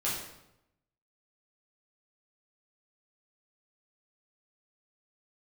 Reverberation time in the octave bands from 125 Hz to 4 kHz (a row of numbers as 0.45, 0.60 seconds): 1.1, 0.95, 0.90, 0.85, 0.70, 0.65 seconds